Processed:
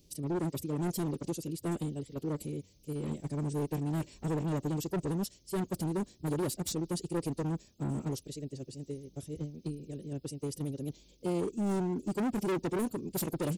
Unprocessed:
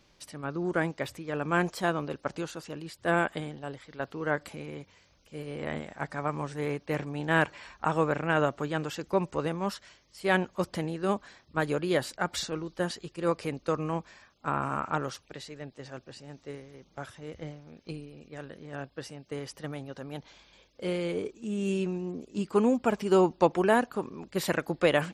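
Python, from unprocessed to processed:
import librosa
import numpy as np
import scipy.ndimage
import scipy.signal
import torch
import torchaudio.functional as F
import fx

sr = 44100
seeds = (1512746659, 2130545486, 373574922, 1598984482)

y = fx.curve_eq(x, sr, hz=(150.0, 390.0, 810.0, 1500.0, 2600.0, 13000.0), db=(0, -1, -20, -29, -13, 9))
y = np.clip(10.0 ** (33.5 / 20.0) * y, -1.0, 1.0) / 10.0 ** (33.5 / 20.0)
y = fx.stretch_vocoder(y, sr, factor=0.54)
y = F.gain(torch.from_numpy(y), 5.0).numpy()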